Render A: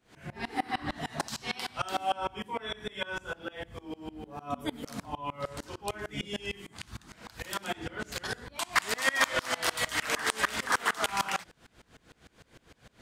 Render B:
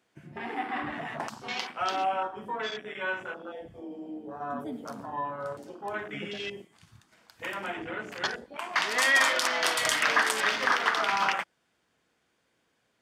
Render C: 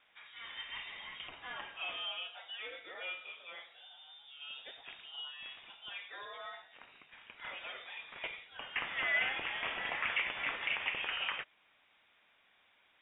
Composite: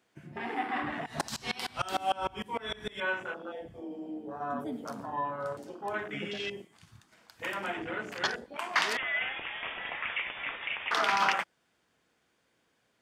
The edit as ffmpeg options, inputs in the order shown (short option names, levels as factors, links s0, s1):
-filter_complex "[1:a]asplit=3[s0][s1][s2];[s0]atrim=end=1.062[s3];[0:a]atrim=start=1.058:end=3.002[s4];[s1]atrim=start=2.998:end=8.972[s5];[2:a]atrim=start=8.968:end=10.912[s6];[s2]atrim=start=10.908[s7];[s3][s4]acrossfade=d=0.004:c1=hsin:c2=hsin[s8];[s8][s5]acrossfade=d=0.004:c1=hsin:c2=hsin[s9];[s9][s6]acrossfade=d=0.004:c1=hsin:c2=hsin[s10];[s10][s7]acrossfade=d=0.004:c1=hsin:c2=hsin"